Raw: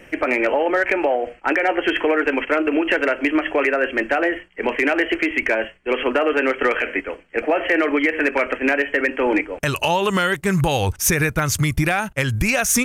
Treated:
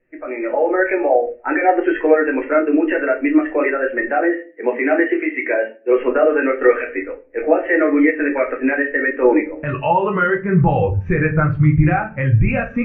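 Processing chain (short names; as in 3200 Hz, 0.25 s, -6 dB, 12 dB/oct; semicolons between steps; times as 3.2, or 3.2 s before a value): LPF 2400 Hz 24 dB/oct; AGC gain up to 9.5 dB; 4.08–5.96 HPF 180 Hz 24 dB/oct; reverb RT60 0.50 s, pre-delay 6 ms, DRR 0.5 dB; spectral expander 1.5:1; gain -5 dB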